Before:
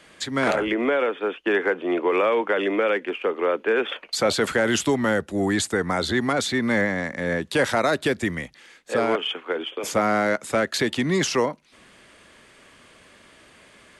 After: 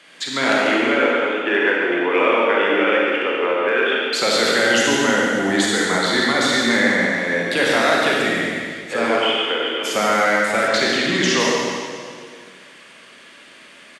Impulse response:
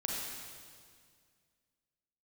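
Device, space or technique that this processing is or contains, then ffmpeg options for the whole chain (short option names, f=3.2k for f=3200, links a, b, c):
PA in a hall: -filter_complex "[0:a]highpass=180,equalizer=f=2.8k:t=o:w=2.4:g=7,aecho=1:1:142:0.447[a];[1:a]atrim=start_sample=2205[b];[a][b]afir=irnorm=-1:irlink=0,asettb=1/sr,asplit=3[c][d][e];[c]atrim=end=10.684[f];[d]atrim=start=10.68:end=11.4,asetpts=PTS-STARTPTS,afade=t=in:d=0.004:c=qsin,afade=t=out:st=0.716:d=0.004:c=qsin,lowpass=7.6k[g];[e]atrim=start=11.396[h];[f][g]acrossfade=d=0.004:c1=hsin:c2=qsin[i];[i][h]acrossfade=d=0.004:c1=qsin:c2=hsin,volume=-1.5dB"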